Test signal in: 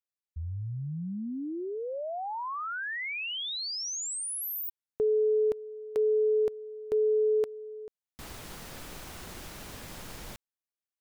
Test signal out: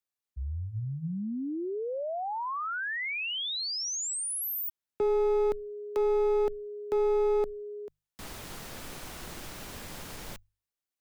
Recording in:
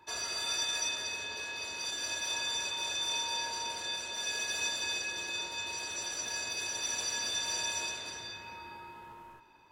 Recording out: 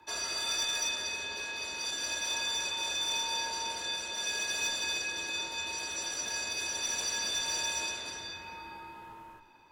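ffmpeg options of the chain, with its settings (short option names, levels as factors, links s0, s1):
-af "aeval=exprs='clip(val(0),-1,0.0376)':c=same,afreqshift=-15,bandreject=f=50:t=h:w=6,bandreject=f=100:t=h:w=6,bandreject=f=150:t=h:w=6,volume=1.19"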